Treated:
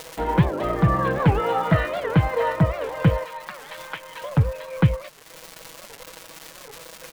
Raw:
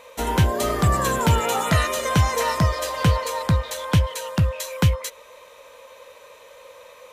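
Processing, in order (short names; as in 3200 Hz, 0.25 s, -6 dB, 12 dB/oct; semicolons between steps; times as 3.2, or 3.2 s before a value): 3.25–4.24 HPF 1100 Hz 12 dB/oct; crossover distortion -44.5 dBFS; Gaussian blur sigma 3.4 samples; crackle 310/s -34 dBFS; upward compressor, threshold -30 dBFS; comb 6.2 ms, depth 68%; record warp 78 rpm, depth 250 cents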